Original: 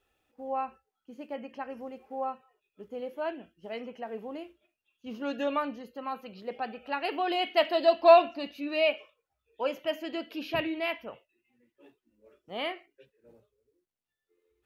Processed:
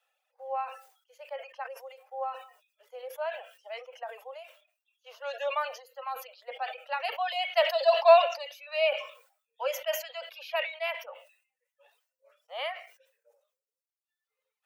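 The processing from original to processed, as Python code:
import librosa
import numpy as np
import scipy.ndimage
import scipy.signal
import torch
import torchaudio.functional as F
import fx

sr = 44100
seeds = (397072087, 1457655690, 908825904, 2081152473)

y = scipy.signal.sosfilt(scipy.signal.butter(16, 510.0, 'highpass', fs=sr, output='sos'), x)
y = fx.dereverb_blind(y, sr, rt60_s=1.3)
y = fx.sustainer(y, sr, db_per_s=110.0)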